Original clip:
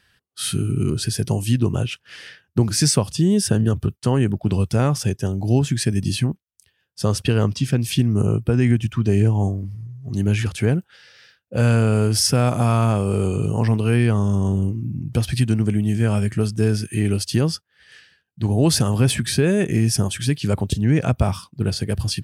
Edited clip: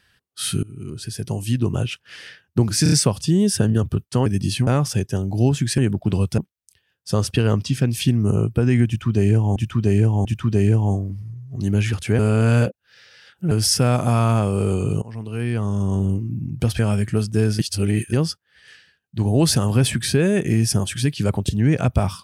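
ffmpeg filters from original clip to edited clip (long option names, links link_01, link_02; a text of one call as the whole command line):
ffmpeg -i in.wav -filter_complex "[0:a]asplit=17[link_01][link_02][link_03][link_04][link_05][link_06][link_07][link_08][link_09][link_10][link_11][link_12][link_13][link_14][link_15][link_16][link_17];[link_01]atrim=end=0.63,asetpts=PTS-STARTPTS,afade=type=out:start_time=0.626:duration=0.004:curve=hsin:silence=0.0891251[link_18];[link_02]atrim=start=0.63:end=2.862,asetpts=PTS-STARTPTS,afade=type=in:duration=1.22:silence=0.0891251[link_19];[link_03]atrim=start=2.828:end=2.862[link_20];[link_04]atrim=start=2.828:end=2.862[link_21];[link_05]atrim=start=2.828:end=4.172[link_22];[link_06]atrim=start=5.878:end=6.292[link_23];[link_07]atrim=start=4.768:end=5.882[link_24];[link_08]atrim=start=4.168:end=4.772[link_25];[link_09]atrim=start=6.288:end=9.472[link_26];[link_10]atrim=start=8.778:end=9.472[link_27];[link_11]atrim=start=8.778:end=10.722[link_28];[link_12]atrim=start=10.718:end=12.042,asetpts=PTS-STARTPTS,areverse[link_29];[link_13]atrim=start=12.038:end=13.55,asetpts=PTS-STARTPTS,afade=type=out:start_time=1.508:duration=0.004:curve=hsin:silence=0.0749894[link_30];[link_14]atrim=start=13.55:end=15.322,asetpts=PTS-STARTPTS,afade=type=in:duration=1.04:silence=0.0749894[link_31];[link_15]atrim=start=16.028:end=16.832[link_32];[link_16]atrim=start=16.828:end=17.372,asetpts=PTS-STARTPTS,areverse[link_33];[link_17]atrim=start=17.368[link_34];[link_18][link_19]concat=n=2:v=0:a=1[link_35];[link_35][link_20]acrossfade=duration=0.004:curve1=hsin:curve2=hsin[link_36];[link_36][link_21]acrossfade=duration=0.004:curve1=hsin:curve2=hsin[link_37];[link_37][link_22]acrossfade=duration=0.004:curve1=hsin:curve2=hsin[link_38];[link_38][link_23]acrossfade=duration=0.004:curve1=hsin:curve2=hsin[link_39];[link_39][link_24]acrossfade=duration=0.004:curve1=hsin:curve2=hsin[link_40];[link_40][link_25]acrossfade=duration=0.004:curve1=hsin:curve2=hsin[link_41];[link_41][link_26]acrossfade=duration=0.004:curve1=hsin:curve2=hsin[link_42];[link_42][link_27]acrossfade=duration=0.004:curve1=hsin:curve2=hsin[link_43];[link_43][link_28]acrossfade=duration=0.004:curve1=hsin:curve2=hsin[link_44];[link_44][link_29]acrossfade=duration=0.004:curve1=hsin:curve2=hsin[link_45];[link_30][link_31]concat=n=2:v=0:a=1[link_46];[link_45][link_46]acrossfade=duration=0.004:curve1=hsin:curve2=hsin[link_47];[link_47][link_32]acrossfade=duration=0.004:curve1=hsin:curve2=hsin[link_48];[link_48][link_33]acrossfade=duration=0.004:curve1=hsin:curve2=hsin[link_49];[link_49][link_34]acrossfade=duration=0.004:curve1=hsin:curve2=hsin" out.wav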